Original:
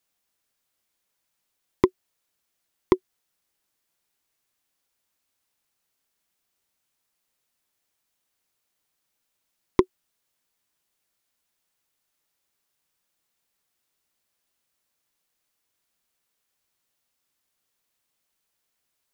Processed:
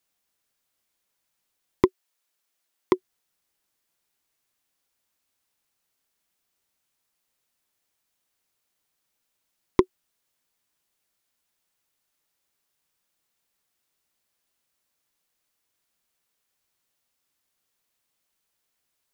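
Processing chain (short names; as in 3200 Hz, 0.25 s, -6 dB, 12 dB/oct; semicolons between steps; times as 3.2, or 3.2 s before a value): 1.87–2.95 HPF 750 Hz -> 270 Hz 6 dB/oct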